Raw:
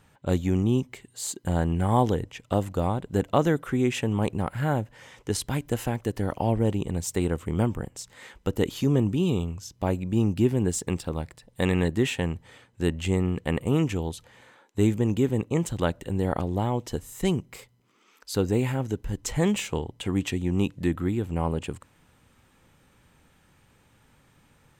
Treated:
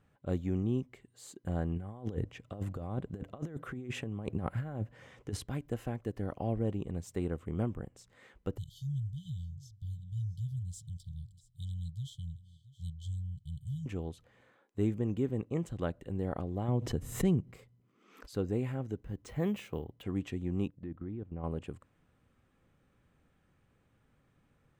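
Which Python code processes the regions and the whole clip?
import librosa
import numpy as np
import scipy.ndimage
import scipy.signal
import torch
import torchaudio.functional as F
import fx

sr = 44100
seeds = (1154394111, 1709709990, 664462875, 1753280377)

y = fx.chain(x, sr, fx.highpass(hz=61.0, slope=12),
    fx.low_shelf(hz=130.0, db=5.0),
    fx.over_compress(threshold_db=-27.0, ratio=-0.5), at=(1.76, 5.44))
y = fx.chain(y, sr, fx.brickwall_bandstop(low_hz=160.0, high_hz=3000.0),
    fx.echo_single(ms=674, db=-19.0), at=(8.58, 13.86))
y = fx.chain(y, sr, fx.peak_eq(hz=120.0, db=8.0, octaves=2.5),
    fx.pre_swell(db_per_s=77.0), at=(16.68, 18.35))
y = fx.chain(y, sr, fx.highpass(hz=58.0, slope=12),
    fx.resample_bad(factor=3, down='filtered', up='hold'), at=(19.03, 20.03))
y = fx.chain(y, sr, fx.level_steps(step_db=15),
    fx.spacing_loss(db_at_10k=28), at=(20.68, 21.44))
y = fx.high_shelf(y, sr, hz=2500.0, db=-12.0)
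y = fx.notch(y, sr, hz=900.0, q=6.6)
y = y * 10.0 ** (-8.5 / 20.0)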